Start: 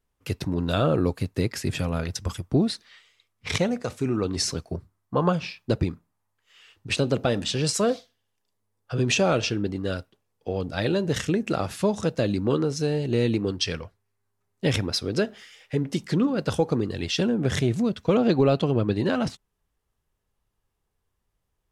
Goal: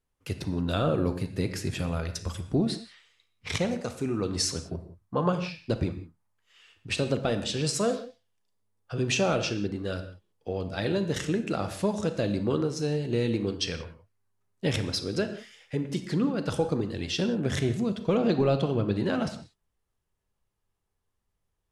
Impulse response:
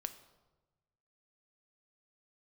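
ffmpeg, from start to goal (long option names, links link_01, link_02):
-filter_complex "[0:a]asettb=1/sr,asplit=3[link_01][link_02][link_03];[link_01]atrim=end=3.684[link_04];[link_02]atrim=start=3.68:end=4.55,asetpts=PTS-STARTPTS,afade=type=in:duration=0.004:curve=qsin,afade=type=out:start_time=0.866:duration=0.004:curve=qsin,equalizer=frequency=11000:width=0.34:gain=3.5[link_05];[link_03]atrim=start=4.546[link_06];[link_04][link_05]acrossfade=duration=0.004:curve1=hsin:curve2=qsin[link_07];[link_07][link_06]acrossfade=duration=0.004:curve1=qsin:curve2=hsin[link_08];[1:a]atrim=start_sample=2205,atrim=end_sample=4410,asetrate=22932,aresample=44100[link_09];[link_08][link_09]afir=irnorm=-1:irlink=0,volume=-5dB"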